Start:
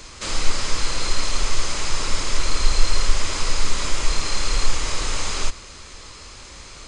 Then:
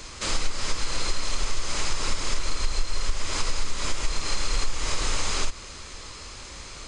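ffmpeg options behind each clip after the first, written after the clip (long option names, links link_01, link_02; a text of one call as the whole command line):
ffmpeg -i in.wav -af "acompressor=threshold=-18dB:ratio=6" out.wav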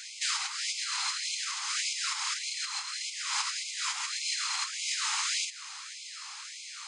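ffmpeg -i in.wav -af "afftfilt=real='re*gte(b*sr/1024,730*pow(2100/730,0.5+0.5*sin(2*PI*1.7*pts/sr)))':imag='im*gte(b*sr/1024,730*pow(2100/730,0.5+0.5*sin(2*PI*1.7*pts/sr)))':win_size=1024:overlap=0.75" out.wav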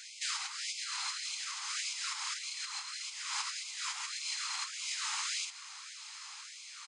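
ffmpeg -i in.wav -af "aecho=1:1:959:0.133,volume=-5.5dB" out.wav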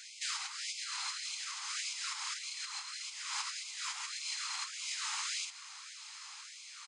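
ffmpeg -i in.wav -af "asoftclip=type=hard:threshold=-25dB,volume=-1.5dB" out.wav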